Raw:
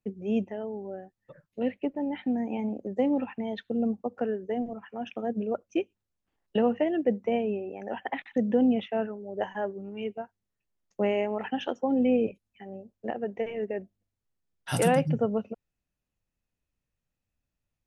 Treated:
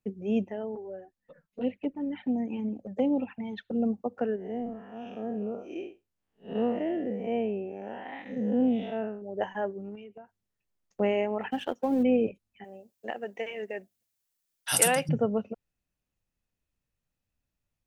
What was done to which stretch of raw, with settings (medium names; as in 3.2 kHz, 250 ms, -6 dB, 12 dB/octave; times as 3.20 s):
0.75–3.73 s: touch-sensitive flanger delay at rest 5.1 ms, full sweep at -24 dBFS
4.36–9.22 s: spectral blur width 158 ms
9.95–11.00 s: compression 10:1, threshold -42 dBFS
11.51–12.03 s: companding laws mixed up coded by A
12.64–15.09 s: tilt EQ +4 dB/octave